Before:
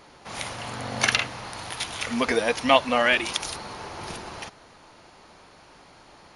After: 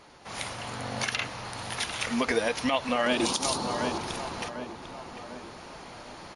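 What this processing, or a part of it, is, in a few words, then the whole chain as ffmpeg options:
low-bitrate web radio: -filter_complex "[0:a]asettb=1/sr,asplit=3[a][b][c];[a]atrim=end=3.064[d];[b]atrim=start=3.06:end=3.98,asetpts=PTS-STARTPTS,afade=t=in:d=0.004:c=qsin,afade=t=out:st=0.916:d=0.004:c=qsin,equalizer=f=125:t=o:w=1:g=4,equalizer=f=250:t=o:w=1:g=12,equalizer=f=500:t=o:w=1:g=3,equalizer=f=1k:t=o:w=1:g=7,equalizer=f=2k:t=o:w=1:g=-9,equalizer=f=4k:t=o:w=1:g=6,equalizer=f=8k:t=o:w=1:g=7[e];[c]atrim=start=3.976[f];[d][e]acrossfade=d=0.004:c1=hsin:c2=qsin[g];[g][f]acrossfade=d=0.004:c1=qsin:c2=hsin,asplit=2[h][i];[i]adelay=747,lowpass=f=2k:p=1,volume=-12dB,asplit=2[j][k];[k]adelay=747,lowpass=f=2k:p=1,volume=0.38,asplit=2[l][m];[m]adelay=747,lowpass=f=2k:p=1,volume=0.38,asplit=2[n][o];[o]adelay=747,lowpass=f=2k:p=1,volume=0.38[p];[h][j][l][n][p]amix=inputs=5:normalize=0,dynaudnorm=f=340:g=9:m=8.5dB,alimiter=limit=-12dB:level=0:latency=1:release=108,volume=-2dB" -ar 24000 -c:a libmp3lame -b:a 48k

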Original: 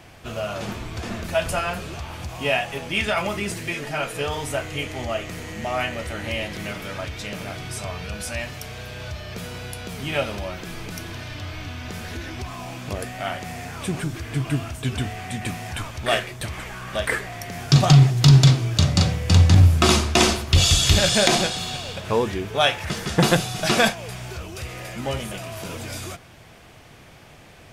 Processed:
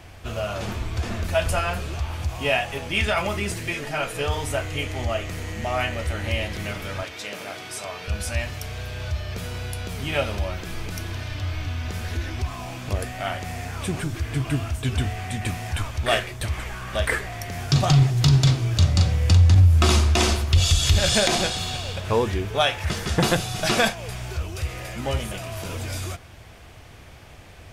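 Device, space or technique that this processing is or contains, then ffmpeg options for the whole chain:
car stereo with a boomy subwoofer: -filter_complex "[0:a]lowshelf=f=110:t=q:w=1.5:g=6.5,alimiter=limit=-8dB:level=0:latency=1:release=219,asettb=1/sr,asplit=3[a][b][c];[a]atrim=end=7.034[d];[b]atrim=start=7.03:end=8.08,asetpts=PTS-STARTPTS,afade=t=in:d=0.004:c=qsin,afade=t=out:st=1.046:d=0.004:c=qsin,highpass=290[e];[c]atrim=start=8.076[f];[d][e]acrossfade=d=0.004:c1=hsin:c2=qsin[g];[g][f]acrossfade=d=0.004:c1=qsin:c2=hsin"

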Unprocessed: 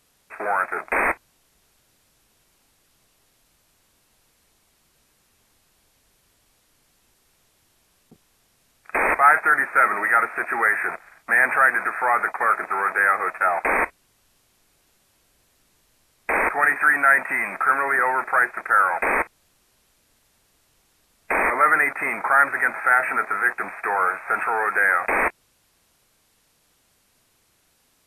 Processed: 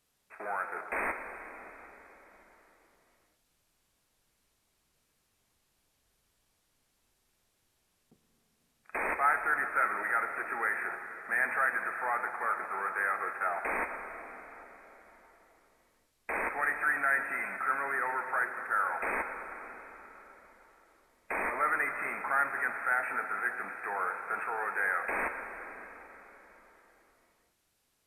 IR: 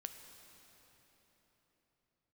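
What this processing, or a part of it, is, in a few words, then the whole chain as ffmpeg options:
cathedral: -filter_complex "[1:a]atrim=start_sample=2205[a];[0:a][a]afir=irnorm=-1:irlink=0,volume=-8dB"

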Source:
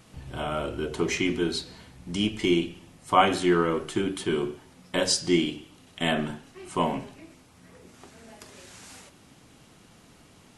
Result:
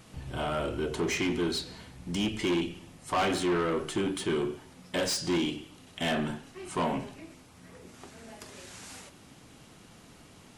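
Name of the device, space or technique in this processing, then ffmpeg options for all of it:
saturation between pre-emphasis and de-emphasis: -af "highshelf=f=5.1k:g=6.5,asoftclip=type=tanh:threshold=-24.5dB,highshelf=f=5.1k:g=-6.5,volume=1dB"

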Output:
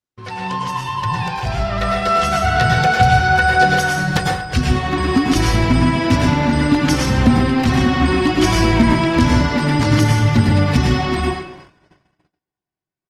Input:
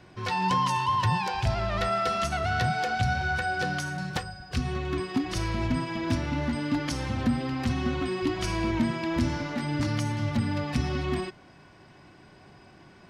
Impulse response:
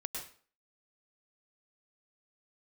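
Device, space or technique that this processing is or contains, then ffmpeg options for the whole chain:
speakerphone in a meeting room: -filter_complex "[1:a]atrim=start_sample=2205[a];[0:a][a]afir=irnorm=-1:irlink=0,asplit=2[b][c];[c]adelay=230,highpass=300,lowpass=3.4k,asoftclip=type=hard:threshold=-23dB,volume=-16dB[d];[b][d]amix=inputs=2:normalize=0,dynaudnorm=f=400:g=11:m=12.5dB,agate=range=-43dB:threshold=-42dB:ratio=16:detection=peak,volume=2.5dB" -ar 48000 -c:a libopus -b:a 24k

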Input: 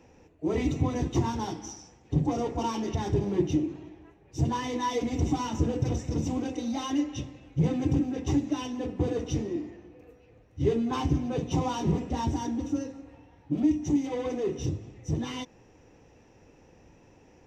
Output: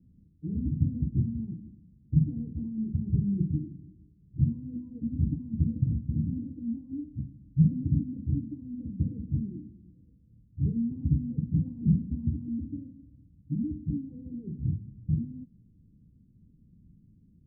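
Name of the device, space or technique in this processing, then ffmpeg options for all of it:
the neighbour's flat through the wall: -af "lowpass=f=200:w=0.5412,lowpass=f=200:w=1.3066,equalizer=f=200:t=o:w=0.9:g=7.5"

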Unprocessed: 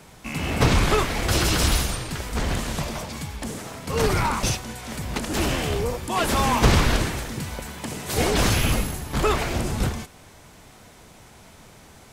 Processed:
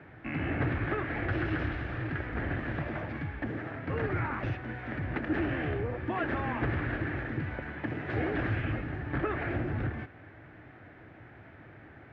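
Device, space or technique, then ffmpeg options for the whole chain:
bass amplifier: -af "acompressor=threshold=-26dB:ratio=4,highpass=71,equalizer=f=110:t=q:w=4:g=7,equalizer=f=200:t=q:w=4:g=-7,equalizer=f=310:t=q:w=4:g=8,equalizer=f=460:t=q:w=4:g=-3,equalizer=f=1k:t=q:w=4:g=-8,equalizer=f=1.7k:t=q:w=4:g=8,lowpass=f=2.2k:w=0.5412,lowpass=f=2.2k:w=1.3066,volume=-2.5dB"

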